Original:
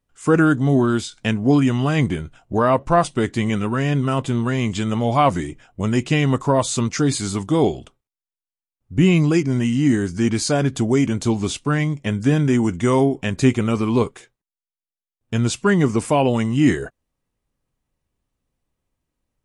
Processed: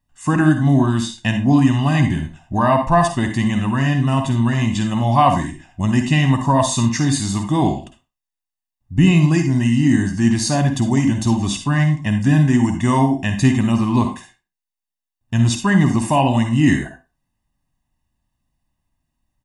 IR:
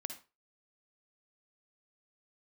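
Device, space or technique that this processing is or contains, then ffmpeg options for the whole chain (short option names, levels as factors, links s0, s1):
microphone above a desk: -filter_complex "[0:a]aecho=1:1:1.1:0.85[s0];[1:a]atrim=start_sample=2205[s1];[s0][s1]afir=irnorm=-1:irlink=0,volume=1.26"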